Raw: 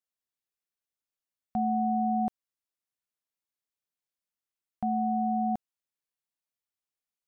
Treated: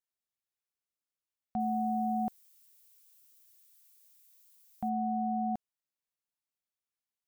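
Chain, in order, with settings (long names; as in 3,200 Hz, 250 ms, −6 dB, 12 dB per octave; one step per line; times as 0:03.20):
0:01.59–0:04.88: background noise violet −59 dBFS
level −4 dB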